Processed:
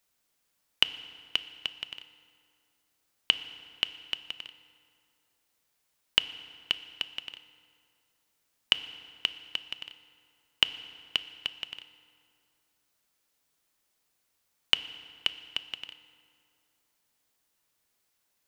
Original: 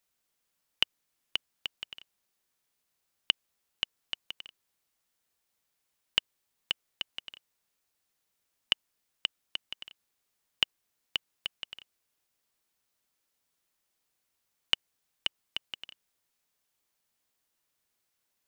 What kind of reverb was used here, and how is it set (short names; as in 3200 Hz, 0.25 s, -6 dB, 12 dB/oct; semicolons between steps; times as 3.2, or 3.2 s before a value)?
FDN reverb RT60 2.4 s, low-frequency decay 1×, high-frequency decay 0.65×, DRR 11.5 dB; gain +3.5 dB